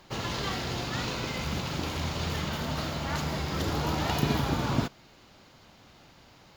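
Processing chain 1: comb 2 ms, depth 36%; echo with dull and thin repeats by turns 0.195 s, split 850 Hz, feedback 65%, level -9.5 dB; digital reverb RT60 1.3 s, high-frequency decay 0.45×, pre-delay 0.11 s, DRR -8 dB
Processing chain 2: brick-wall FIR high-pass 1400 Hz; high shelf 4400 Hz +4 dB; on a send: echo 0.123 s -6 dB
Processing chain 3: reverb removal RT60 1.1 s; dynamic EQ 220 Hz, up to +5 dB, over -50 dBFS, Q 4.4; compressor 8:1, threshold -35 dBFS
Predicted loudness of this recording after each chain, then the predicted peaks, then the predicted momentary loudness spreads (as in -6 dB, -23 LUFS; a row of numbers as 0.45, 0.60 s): -22.5, -33.5, -39.0 LUFS; -7.0, -18.0, -23.0 dBFS; 12, 3, 19 LU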